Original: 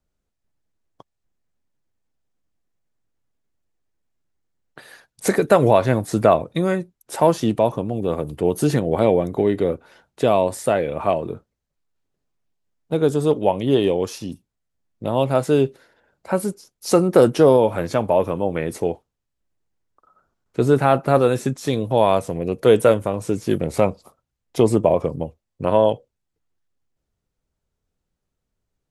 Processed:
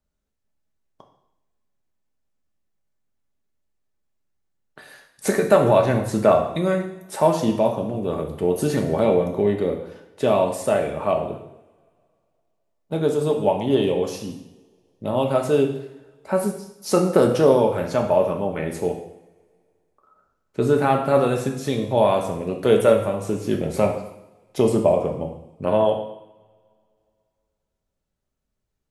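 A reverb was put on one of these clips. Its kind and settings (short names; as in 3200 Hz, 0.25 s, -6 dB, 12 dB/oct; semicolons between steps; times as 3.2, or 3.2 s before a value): two-slope reverb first 0.76 s, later 2.5 s, from -25 dB, DRR 2 dB; gain -3.5 dB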